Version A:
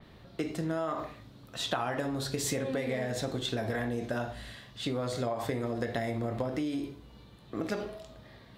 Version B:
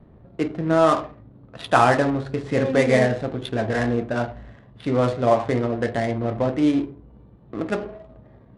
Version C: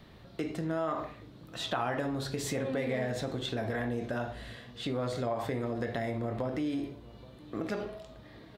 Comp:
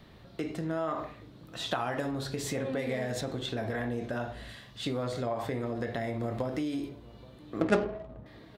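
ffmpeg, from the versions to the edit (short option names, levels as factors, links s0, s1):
-filter_complex "[0:a]asplit=4[s0][s1][s2][s3];[2:a]asplit=6[s4][s5][s6][s7][s8][s9];[s4]atrim=end=1.662[s10];[s0]atrim=start=1.658:end=2.112[s11];[s5]atrim=start=2.108:end=2.792[s12];[s1]atrim=start=2.788:end=3.212[s13];[s6]atrim=start=3.208:end=4.492[s14];[s2]atrim=start=4.488:end=5.032[s15];[s7]atrim=start=5.028:end=6.202[s16];[s3]atrim=start=6.198:end=6.892[s17];[s8]atrim=start=6.888:end=7.612[s18];[1:a]atrim=start=7.608:end=8.262[s19];[s9]atrim=start=8.258[s20];[s10][s11]acrossfade=d=0.004:c1=hsin:c2=hsin[s21];[s21][s12]acrossfade=d=0.004:c1=hsin:c2=hsin[s22];[s22][s13]acrossfade=d=0.004:c1=hsin:c2=hsin[s23];[s23][s14]acrossfade=d=0.004:c1=hsin:c2=hsin[s24];[s24][s15]acrossfade=d=0.004:c1=hsin:c2=hsin[s25];[s25][s16]acrossfade=d=0.004:c1=hsin:c2=hsin[s26];[s26][s17]acrossfade=d=0.004:c1=hsin:c2=hsin[s27];[s27][s18]acrossfade=d=0.004:c1=hsin:c2=hsin[s28];[s28][s19]acrossfade=d=0.004:c1=hsin:c2=hsin[s29];[s29][s20]acrossfade=d=0.004:c1=hsin:c2=hsin"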